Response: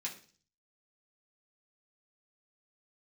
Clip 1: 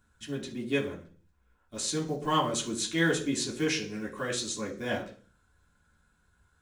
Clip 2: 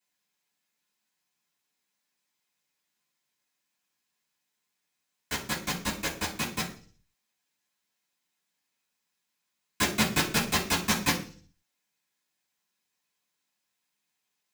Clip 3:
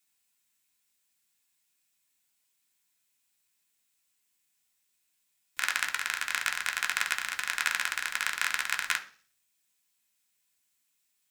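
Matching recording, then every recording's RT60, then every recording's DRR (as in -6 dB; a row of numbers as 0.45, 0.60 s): 1; 0.40, 0.40, 0.40 s; -4.5, -11.0, 3.0 dB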